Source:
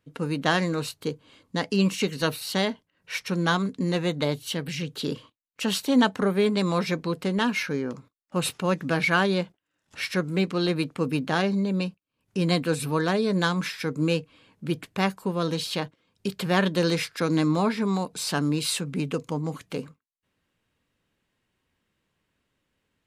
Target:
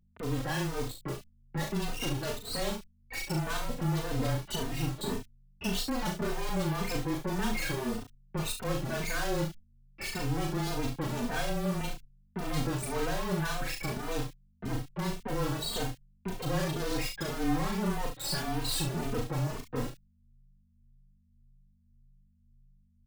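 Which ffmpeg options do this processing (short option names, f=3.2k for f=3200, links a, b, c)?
-filter_complex "[0:a]asettb=1/sr,asplit=3[a][b][c];[a]atrim=end=9.404[d];[b]atrim=start=9.4:end=10.67,asetpts=PTS-STARTPTS,afade=t=in:d=0.004:c=qsin,afade=t=out:st=1.266:d=0.004:c=qsin,highpass=79[e];[c]atrim=start=10.666[f];[d][e]acrossfade=d=0.004:c1=hsin:c2=qsin[g];[g][f]acrossfade=d=0.004:c1=qsin:c2=hsin,afftfilt=real='re*gte(hypot(re,im),0.0562)':imag='im*gte(hypot(re,im),0.0562)':win_size=1024:overlap=0.75,dynaudnorm=f=230:g=11:m=10dB,volume=21.5dB,asoftclip=hard,volume=-21.5dB,acrusher=bits=3:dc=4:mix=0:aa=0.000001,acrossover=split=2300[h][i];[i]adelay=30[j];[h][j]amix=inputs=2:normalize=0,aeval=exprs='val(0)+0.000794*(sin(2*PI*50*n/s)+sin(2*PI*2*50*n/s)/2+sin(2*PI*3*50*n/s)/3+sin(2*PI*4*50*n/s)/4+sin(2*PI*5*50*n/s)/5)':c=same,afreqshift=-20,asplit=2[k][l];[l]aecho=0:1:38|70:0.596|0.355[m];[k][m]amix=inputs=2:normalize=0,asplit=2[n][o];[o]adelay=3.1,afreqshift=1.8[p];[n][p]amix=inputs=2:normalize=1"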